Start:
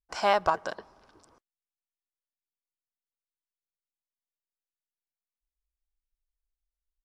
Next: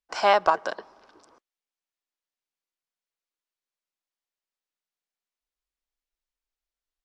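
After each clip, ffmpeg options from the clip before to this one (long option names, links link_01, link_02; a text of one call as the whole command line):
ffmpeg -i in.wav -filter_complex "[0:a]acrossover=split=230 7300:gain=0.2 1 0.251[link_01][link_02][link_03];[link_01][link_02][link_03]amix=inputs=3:normalize=0,volume=4.5dB" out.wav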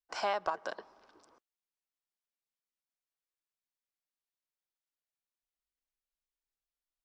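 ffmpeg -i in.wav -af "acompressor=threshold=-24dB:ratio=2.5,volume=-7dB" out.wav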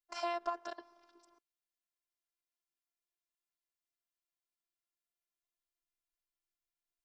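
ffmpeg -i in.wav -af "afftfilt=real='hypot(re,im)*cos(PI*b)':imag='0':win_size=512:overlap=0.75" out.wav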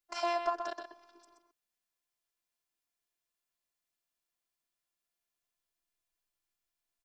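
ffmpeg -i in.wav -af "aecho=1:1:126:0.422,volume=4dB" out.wav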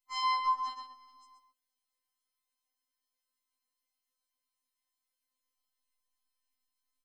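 ffmpeg -i in.wav -af "afftfilt=real='re*3.46*eq(mod(b,12),0)':imag='im*3.46*eq(mod(b,12),0)':win_size=2048:overlap=0.75" out.wav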